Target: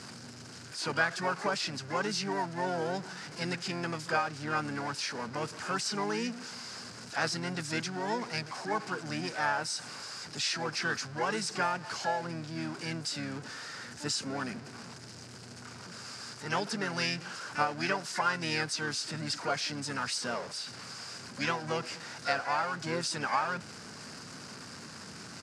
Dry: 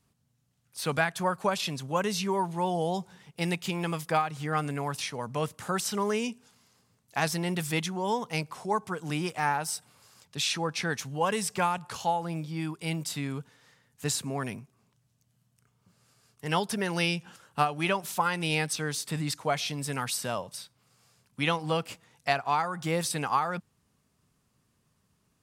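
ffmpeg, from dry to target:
-filter_complex "[0:a]aeval=exprs='val(0)+0.5*0.0224*sgn(val(0))':c=same,lowshelf=f=210:g=-4,asplit=3[s0][s1][s2];[s1]asetrate=33038,aresample=44100,atempo=1.33484,volume=0.447[s3];[s2]asetrate=88200,aresample=44100,atempo=0.5,volume=0.282[s4];[s0][s3][s4]amix=inputs=3:normalize=0,highpass=120,equalizer=f=240:t=q:w=4:g=4,equalizer=f=1500:t=q:w=4:g=8,equalizer=f=3400:t=q:w=4:g=-5,equalizer=f=4900:t=q:w=4:g=9,lowpass=f=8300:w=0.5412,lowpass=f=8300:w=1.3066,volume=0.447"

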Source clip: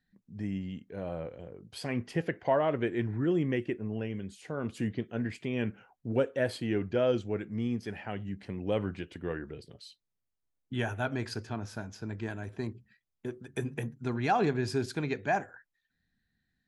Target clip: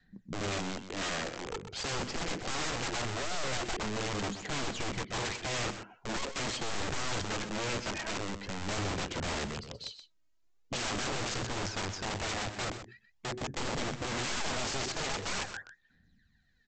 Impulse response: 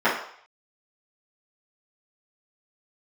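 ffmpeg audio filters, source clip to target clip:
-af "aphaser=in_gain=1:out_gain=1:delay=3.2:decay=0.61:speed=0.44:type=sinusoidal,adynamicequalizer=threshold=0.0126:dfrequency=210:dqfactor=1.8:tfrequency=210:tqfactor=1.8:attack=5:release=100:ratio=0.375:range=2:mode=boostabove:tftype=bell,aeval=exprs='(tanh(35.5*val(0)+0.4)-tanh(0.4))/35.5':c=same,aresample=16000,aeval=exprs='(mod(75*val(0)+1,2)-1)/75':c=same,aresample=44100,aecho=1:1:127:0.299,volume=2.24"

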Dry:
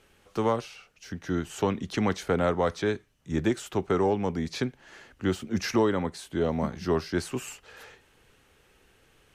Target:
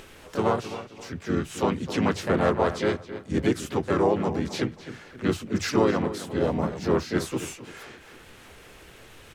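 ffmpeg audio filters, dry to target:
-filter_complex "[0:a]bandreject=f=50:t=h:w=6,bandreject=f=100:t=h:w=6,bandreject=f=150:t=h:w=6,asplit=2[s0][s1];[s1]adelay=266,lowpass=f=3800:p=1,volume=0.237,asplit=2[s2][s3];[s3]adelay=266,lowpass=f=3800:p=1,volume=0.29,asplit=2[s4][s5];[s5]adelay=266,lowpass=f=3800:p=1,volume=0.29[s6];[s2][s4][s6]amix=inputs=3:normalize=0[s7];[s0][s7]amix=inputs=2:normalize=0,asplit=3[s8][s9][s10];[s9]asetrate=37084,aresample=44100,atempo=1.18921,volume=0.631[s11];[s10]asetrate=55563,aresample=44100,atempo=0.793701,volume=0.562[s12];[s8][s11][s12]amix=inputs=3:normalize=0,acompressor=mode=upward:threshold=0.0141:ratio=2.5"

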